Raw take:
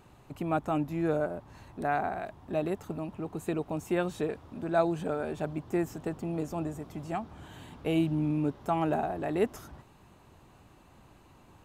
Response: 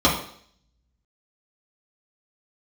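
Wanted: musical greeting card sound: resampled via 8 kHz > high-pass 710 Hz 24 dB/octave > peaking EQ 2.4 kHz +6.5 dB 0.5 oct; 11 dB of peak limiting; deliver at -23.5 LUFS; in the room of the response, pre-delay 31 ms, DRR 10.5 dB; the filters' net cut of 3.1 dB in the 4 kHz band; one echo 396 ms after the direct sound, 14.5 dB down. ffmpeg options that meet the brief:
-filter_complex "[0:a]equalizer=f=4000:t=o:g=-8,alimiter=level_in=1.06:limit=0.0631:level=0:latency=1,volume=0.944,aecho=1:1:396:0.188,asplit=2[s0][s1];[1:a]atrim=start_sample=2205,adelay=31[s2];[s1][s2]afir=irnorm=-1:irlink=0,volume=0.0299[s3];[s0][s3]amix=inputs=2:normalize=0,aresample=8000,aresample=44100,highpass=f=710:w=0.5412,highpass=f=710:w=1.3066,equalizer=f=2400:t=o:w=0.5:g=6.5,volume=9.44"

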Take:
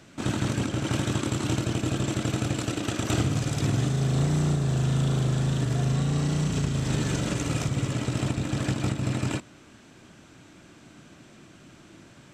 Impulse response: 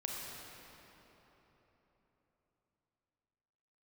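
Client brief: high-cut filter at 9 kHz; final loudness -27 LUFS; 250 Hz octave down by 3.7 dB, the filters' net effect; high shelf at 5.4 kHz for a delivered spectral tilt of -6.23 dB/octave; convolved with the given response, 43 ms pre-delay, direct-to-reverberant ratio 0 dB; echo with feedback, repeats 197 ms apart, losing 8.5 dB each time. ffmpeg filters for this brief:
-filter_complex "[0:a]lowpass=9000,equalizer=f=250:t=o:g=-6,highshelf=f=5400:g=-6.5,aecho=1:1:197|394|591|788:0.376|0.143|0.0543|0.0206,asplit=2[s0][s1];[1:a]atrim=start_sample=2205,adelay=43[s2];[s1][s2]afir=irnorm=-1:irlink=0,volume=0.841[s3];[s0][s3]amix=inputs=2:normalize=0,volume=0.794"

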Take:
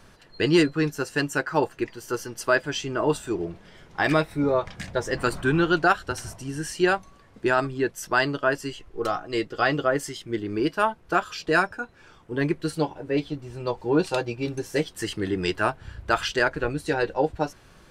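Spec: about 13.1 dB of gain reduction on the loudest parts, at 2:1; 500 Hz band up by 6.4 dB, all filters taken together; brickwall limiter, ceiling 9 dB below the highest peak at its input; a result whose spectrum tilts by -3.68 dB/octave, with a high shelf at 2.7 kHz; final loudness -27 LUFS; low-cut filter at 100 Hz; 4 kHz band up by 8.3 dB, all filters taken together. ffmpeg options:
-af "highpass=100,equalizer=f=500:t=o:g=8,highshelf=f=2700:g=6.5,equalizer=f=4000:t=o:g=5.5,acompressor=threshold=0.0158:ratio=2,volume=2.37,alimiter=limit=0.188:level=0:latency=1"

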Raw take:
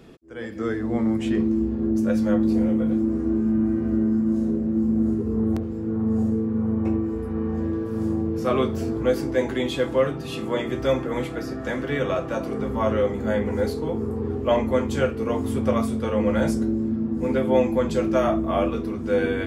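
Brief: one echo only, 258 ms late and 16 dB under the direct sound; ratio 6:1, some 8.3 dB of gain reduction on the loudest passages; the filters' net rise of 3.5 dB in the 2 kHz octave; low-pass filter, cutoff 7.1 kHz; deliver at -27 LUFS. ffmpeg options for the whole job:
-af "lowpass=7100,equalizer=f=2000:t=o:g=4.5,acompressor=threshold=0.0631:ratio=6,aecho=1:1:258:0.158,volume=1.12"

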